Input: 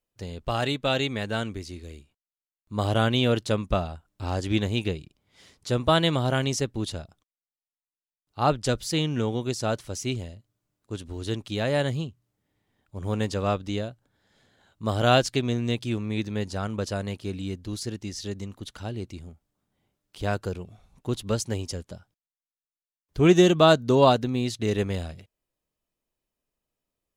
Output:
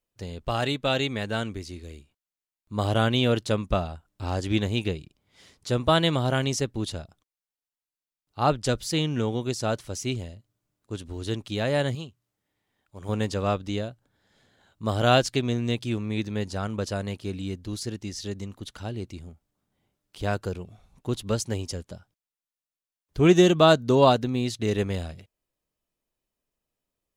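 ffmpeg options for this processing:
-filter_complex "[0:a]asettb=1/sr,asplit=3[s0][s1][s2];[s0]atrim=end=11.954[s3];[s1]atrim=start=11.95:end=13.09,asetpts=PTS-STARTPTS,afade=t=in:d=0.004:c=qsin,afade=t=out:st=1.136:d=0.004:c=qsin,lowshelf=f=420:g=-8.5[s4];[s2]atrim=start=13.086[s5];[s3][s4]acrossfade=d=0.004:c1=hsin:c2=qsin[s6];[s6][s5]acrossfade=d=0.004:c1=qsin:c2=hsin"

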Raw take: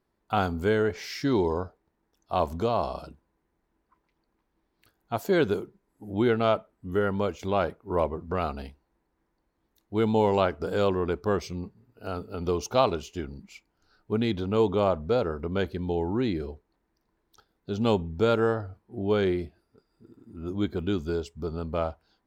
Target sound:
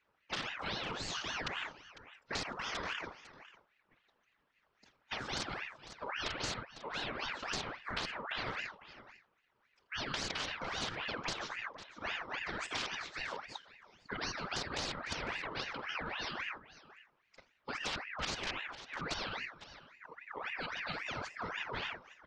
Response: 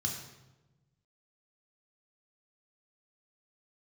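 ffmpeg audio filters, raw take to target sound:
-filter_complex "[0:a]asplit=2[s0][s1];[s1]aecho=0:1:48|81:0.141|0.126[s2];[s0][s2]amix=inputs=2:normalize=0,aeval=exprs='(mod(4.73*val(0)+1,2)-1)/4.73':c=same,afftfilt=real='hypot(re,im)*cos(2*PI*random(0))':imag='hypot(re,im)*sin(2*PI*random(1))':win_size=512:overlap=0.75,afftfilt=real='re*lt(hypot(re,im),0.0562)':imag='im*lt(hypot(re,im),0.0562)':win_size=1024:overlap=0.75,highpass=120,equalizer=f=240:t=q:w=4:g=5,equalizer=f=380:t=q:w=4:g=-6,equalizer=f=540:t=q:w=4:g=7,equalizer=f=1100:t=q:w=4:g=-4,equalizer=f=2200:t=q:w=4:g=4,lowpass=f=4700:w=0.5412,lowpass=f=4700:w=1.3066,asplit=2[s3][s4];[s4]aecho=0:1:501:0.112[s5];[s3][s5]amix=inputs=2:normalize=0,acompressor=threshold=0.00891:ratio=5,aeval=exprs='val(0)*sin(2*PI*1500*n/s+1500*0.55/3.7*sin(2*PI*3.7*n/s))':c=same,volume=2.66"

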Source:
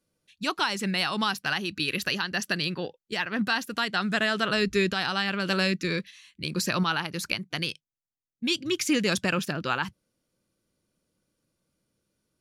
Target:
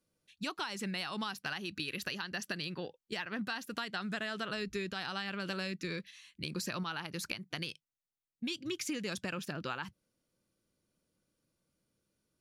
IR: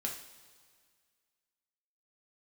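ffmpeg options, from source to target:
-af "acompressor=threshold=0.0282:ratio=5,volume=0.631"

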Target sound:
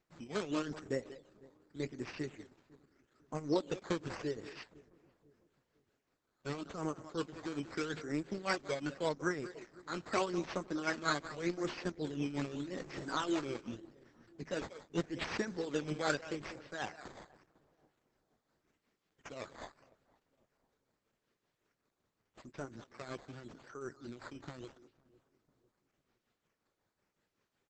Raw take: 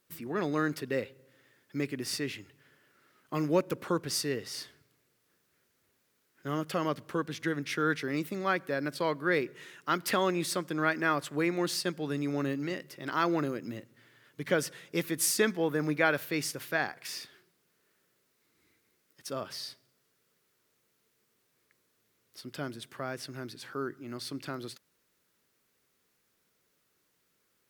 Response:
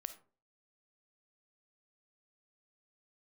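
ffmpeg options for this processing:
-filter_complex "[0:a]asettb=1/sr,asplit=3[s0][s1][s2];[s0]atrim=end=12.774[s3];[s1]atrim=start=12.77:end=13.24,asetpts=PTS-STARTPTS,afade=t=in:d=0.004:c=qsin,afade=t=out:st=0.466:d=0.004:c=qsin,aeval=exprs='val(0)+0.5*0.02*sgn(val(0))':c=same[s4];[s2]atrim=start=13.236[s5];[s3][s4]acrossfade=d=0.004:c1=hsin:c2=qsin[s6];[s6][s5]acrossfade=d=0.004:c1=qsin:c2=hsin,tremolo=f=5.4:d=0.67,equalizer=f=2900:t=o:w=1.1:g=-9,asplit=2[s7][s8];[s8]adelay=190,highpass=300,lowpass=3400,asoftclip=type=hard:threshold=0.0631,volume=0.224[s9];[s7][s9]amix=inputs=2:normalize=0,flanger=delay=0.4:depth=9.4:regen=-48:speed=0.33:shape=sinusoidal,lowpass=f=10000:w=0.5412,lowpass=f=10000:w=1.3066,asettb=1/sr,asplit=3[s10][s11][s12];[s10]atrim=end=16.254[s13];[s11]atrim=start=16.25:end=16.87,asetpts=PTS-STARTPTS,afade=t=in:d=0.004:c=qsin,afade=t=out:st=0.616:d=0.004:c=qsin,highshelf=f=2000:g=-3[s14];[s12]atrim=start=16.866[s15];[s13][s14]acrossfade=d=0.004:c1=hsin:c2=qsin[s16];[s16][s15]acrossfade=d=0.004:c1=qsin:c2=hsin,acrusher=samples=11:mix=1:aa=0.000001:lfo=1:lforange=11:lforate=0.83,asplit=2[s17][s18];[s18]adelay=502,lowpass=f=850:p=1,volume=0.0891,asplit=2[s19][s20];[s20]adelay=502,lowpass=f=850:p=1,volume=0.43,asplit=2[s21][s22];[s22]adelay=502,lowpass=f=850:p=1,volume=0.43[s23];[s19][s21][s23]amix=inputs=3:normalize=0[s24];[s17][s24]amix=inputs=2:normalize=0,volume=1.19" -ar 48000 -c:a libopus -b:a 10k

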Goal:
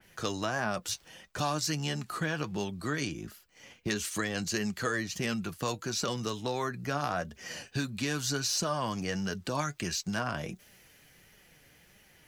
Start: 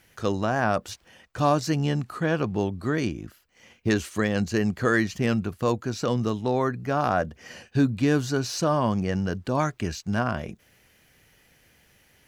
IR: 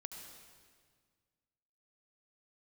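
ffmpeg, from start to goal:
-filter_complex "[0:a]flanger=delay=4.6:depth=2.7:regen=51:speed=1.5:shape=triangular,acrossover=split=130|1100[s0][s1][s2];[s0]acompressor=threshold=0.00316:ratio=4[s3];[s1]acompressor=threshold=0.0126:ratio=4[s4];[s2]acompressor=threshold=0.0126:ratio=4[s5];[s3][s4][s5]amix=inputs=3:normalize=0,adynamicequalizer=threshold=0.00158:dfrequency=3400:dqfactor=0.7:tfrequency=3400:tqfactor=0.7:attack=5:release=100:ratio=0.375:range=3.5:mode=boostabove:tftype=highshelf,volume=1.58"

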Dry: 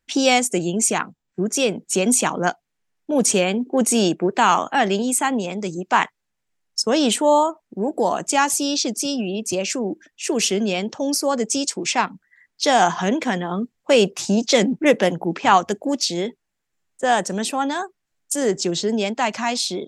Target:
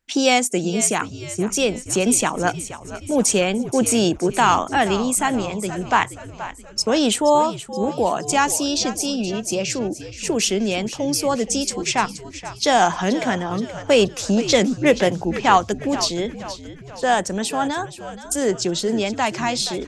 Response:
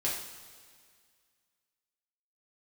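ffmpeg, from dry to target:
-filter_complex "[0:a]asplit=6[s0][s1][s2][s3][s4][s5];[s1]adelay=475,afreqshift=-77,volume=0.211[s6];[s2]adelay=950,afreqshift=-154,volume=0.108[s7];[s3]adelay=1425,afreqshift=-231,volume=0.055[s8];[s4]adelay=1900,afreqshift=-308,volume=0.0282[s9];[s5]adelay=2375,afreqshift=-385,volume=0.0143[s10];[s0][s6][s7][s8][s9][s10]amix=inputs=6:normalize=0"

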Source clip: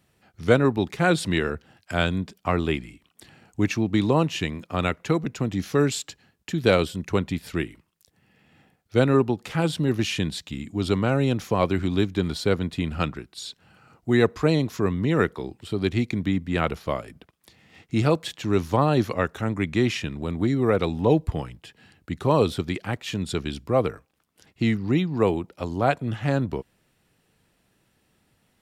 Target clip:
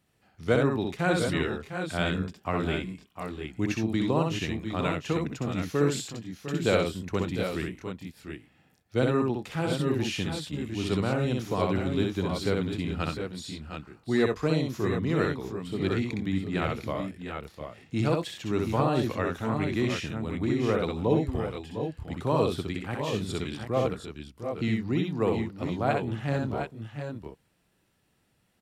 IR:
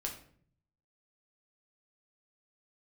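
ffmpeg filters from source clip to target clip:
-af "aecho=1:1:63|86|704|731:0.668|0.188|0.316|0.398,volume=0.473"

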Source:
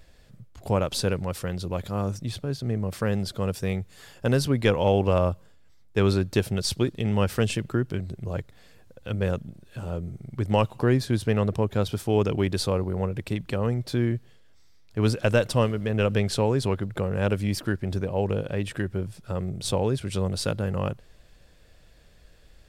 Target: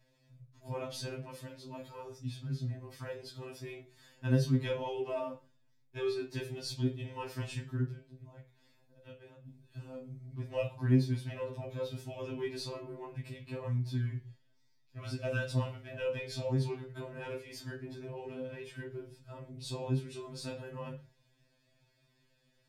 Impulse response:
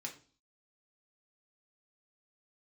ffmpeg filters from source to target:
-filter_complex "[0:a]asettb=1/sr,asplit=3[s0][s1][s2];[s0]atrim=end=7.844[s3];[s1]atrim=start=7.84:end=9.45,asetpts=PTS-STARTPTS,afade=t=in:d=0.004:c=qsin,afade=t=out:st=1.606:d=0.004:c=qsin,acompressor=threshold=0.0158:ratio=5[s4];[s2]atrim=start=9.446[s5];[s3][s4]acrossfade=d=0.004:c1=hsin:c2=qsin[s6];[s6][s5]acrossfade=d=0.004:c1=qsin:c2=hsin[s7];[1:a]atrim=start_sample=2205,afade=t=out:st=0.23:d=0.01,atrim=end_sample=10584[s8];[s7][s8]afir=irnorm=-1:irlink=0,afftfilt=real='re*2.45*eq(mod(b,6),0)':imag='im*2.45*eq(mod(b,6),0)':win_size=2048:overlap=0.75,volume=0.376"

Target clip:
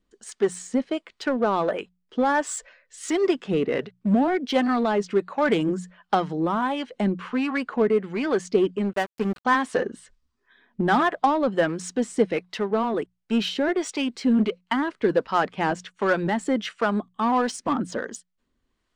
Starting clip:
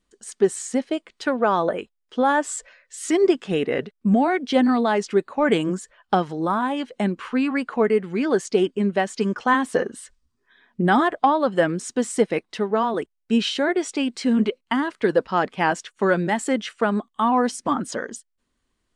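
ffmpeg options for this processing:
-filter_complex "[0:a]bandreject=f=60:t=h:w=6,bandreject=f=120:t=h:w=6,bandreject=f=180:t=h:w=6,asplit=2[s0][s1];[s1]aeval=exprs='0.0841*(abs(mod(val(0)/0.0841+3,4)-2)-1)':c=same,volume=0.266[s2];[s0][s2]amix=inputs=2:normalize=0,acrossover=split=550[s3][s4];[s3]aeval=exprs='val(0)*(1-0.5/2+0.5/2*cos(2*PI*1.4*n/s))':c=same[s5];[s4]aeval=exprs='val(0)*(1-0.5/2-0.5/2*cos(2*PI*1.4*n/s))':c=same[s6];[s5][s6]amix=inputs=2:normalize=0,adynamicsmooth=sensitivity=2.5:basefreq=7500,asettb=1/sr,asplit=3[s7][s8][s9];[s7]atrim=end=8.934[s10];[s8]atrim=start=8.93:end=9.45,asetpts=PTS-STARTPTS,afade=t=in:d=0.004:c=qsin,afade=t=out:st=0.516:d=0.004:c=qsin,aeval=exprs='sgn(val(0))*max(abs(val(0))-0.0299,0)':c=same[s11];[s9]atrim=start=9.446[s12];[s10][s11]acrossfade=d=0.004:c1=hsin:c2=qsin[s13];[s13][s12]acrossfade=d=0.004:c1=qsin:c2=hsin"

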